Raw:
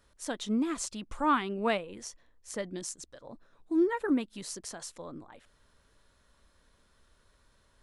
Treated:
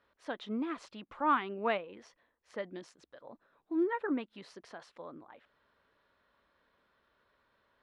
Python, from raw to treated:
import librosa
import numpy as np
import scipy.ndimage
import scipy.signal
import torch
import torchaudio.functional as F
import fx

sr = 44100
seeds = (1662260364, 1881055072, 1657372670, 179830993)

y = fx.highpass(x, sr, hz=550.0, slope=6)
y = fx.air_absorb(y, sr, metres=360.0)
y = y * librosa.db_to_amplitude(1.5)